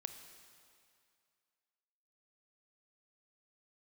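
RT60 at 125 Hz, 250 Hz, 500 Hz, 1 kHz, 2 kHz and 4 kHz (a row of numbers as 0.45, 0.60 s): 2.1, 2.2, 2.3, 2.4, 2.3, 2.2 s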